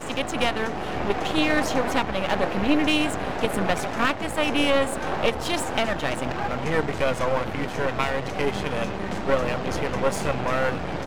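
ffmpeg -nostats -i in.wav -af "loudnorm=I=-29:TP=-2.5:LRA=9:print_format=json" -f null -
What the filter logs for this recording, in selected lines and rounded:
"input_i" : "-25.1",
"input_tp" : "-5.0",
"input_lra" : "2.6",
"input_thresh" : "-35.1",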